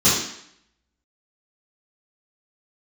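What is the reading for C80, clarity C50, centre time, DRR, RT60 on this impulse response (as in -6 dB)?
5.5 dB, 1.0 dB, 56 ms, -14.5 dB, 0.70 s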